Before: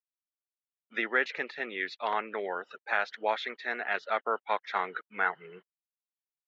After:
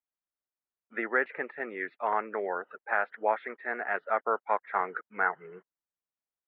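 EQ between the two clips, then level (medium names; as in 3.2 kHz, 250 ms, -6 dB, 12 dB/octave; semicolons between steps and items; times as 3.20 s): low-pass 1.9 kHz 24 dB/octave; tilt EQ -1.5 dB/octave; bass shelf 260 Hz -8.5 dB; +2.5 dB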